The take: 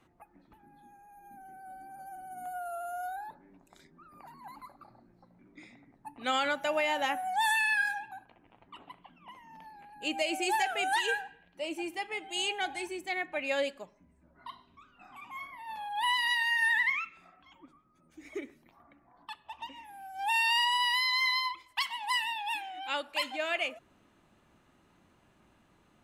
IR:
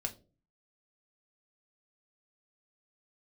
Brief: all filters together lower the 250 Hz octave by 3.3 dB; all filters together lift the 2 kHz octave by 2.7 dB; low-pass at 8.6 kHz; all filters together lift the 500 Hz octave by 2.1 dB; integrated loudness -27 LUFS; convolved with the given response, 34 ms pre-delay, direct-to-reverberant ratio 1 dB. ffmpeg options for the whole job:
-filter_complex "[0:a]lowpass=8600,equalizer=f=250:t=o:g=-7.5,equalizer=f=500:t=o:g=4,equalizer=f=2000:t=o:g=3,asplit=2[s0][s1];[1:a]atrim=start_sample=2205,adelay=34[s2];[s1][s2]afir=irnorm=-1:irlink=0,volume=0.841[s3];[s0][s3]amix=inputs=2:normalize=0,volume=0.891"

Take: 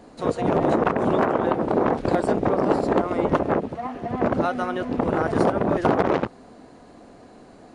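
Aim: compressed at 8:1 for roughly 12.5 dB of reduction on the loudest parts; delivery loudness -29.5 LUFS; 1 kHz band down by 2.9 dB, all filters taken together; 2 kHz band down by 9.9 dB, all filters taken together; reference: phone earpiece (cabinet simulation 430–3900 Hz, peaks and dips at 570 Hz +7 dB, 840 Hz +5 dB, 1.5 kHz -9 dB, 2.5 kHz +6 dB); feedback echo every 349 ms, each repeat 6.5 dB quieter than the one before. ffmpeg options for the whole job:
-af "equalizer=f=1000:t=o:g=-7,equalizer=f=2000:t=o:g=-6.5,acompressor=threshold=0.0316:ratio=8,highpass=430,equalizer=f=570:t=q:w=4:g=7,equalizer=f=840:t=q:w=4:g=5,equalizer=f=1500:t=q:w=4:g=-9,equalizer=f=2500:t=q:w=4:g=6,lowpass=f=3900:w=0.5412,lowpass=f=3900:w=1.3066,aecho=1:1:349|698|1047|1396|1745|2094:0.473|0.222|0.105|0.0491|0.0231|0.0109,volume=1.78"

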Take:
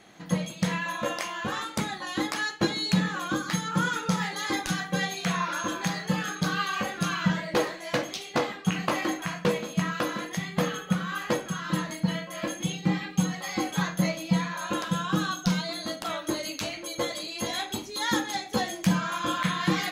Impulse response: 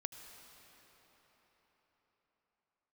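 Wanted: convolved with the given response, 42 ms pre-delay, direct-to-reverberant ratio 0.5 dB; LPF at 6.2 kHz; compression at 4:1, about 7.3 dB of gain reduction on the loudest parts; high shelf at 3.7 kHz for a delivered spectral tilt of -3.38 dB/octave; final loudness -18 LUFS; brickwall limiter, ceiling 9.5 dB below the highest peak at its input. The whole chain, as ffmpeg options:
-filter_complex "[0:a]lowpass=6200,highshelf=f=3700:g=-7.5,acompressor=threshold=0.0398:ratio=4,alimiter=level_in=1.12:limit=0.0631:level=0:latency=1,volume=0.891,asplit=2[s0][s1];[1:a]atrim=start_sample=2205,adelay=42[s2];[s1][s2]afir=irnorm=-1:irlink=0,volume=1.19[s3];[s0][s3]amix=inputs=2:normalize=0,volume=5.62"

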